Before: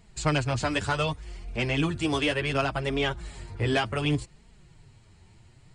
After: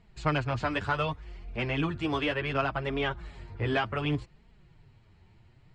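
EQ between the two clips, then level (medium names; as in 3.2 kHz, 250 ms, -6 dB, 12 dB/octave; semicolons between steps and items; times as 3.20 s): dynamic bell 1.2 kHz, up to +4 dB, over -44 dBFS, Q 1.3; low-pass 3.4 kHz 12 dB/octave; -3.5 dB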